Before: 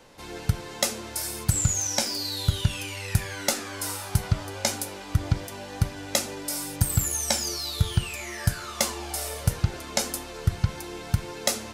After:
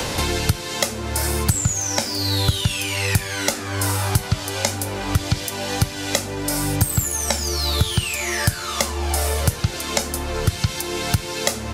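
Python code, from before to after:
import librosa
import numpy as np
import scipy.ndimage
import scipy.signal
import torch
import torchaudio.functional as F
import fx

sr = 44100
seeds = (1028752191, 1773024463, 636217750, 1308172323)

y = scipy.signal.sosfilt(scipy.signal.butter(2, 42.0, 'highpass', fs=sr, output='sos'), x)
y = fx.band_squash(y, sr, depth_pct=100)
y = y * 10.0 ** (4.5 / 20.0)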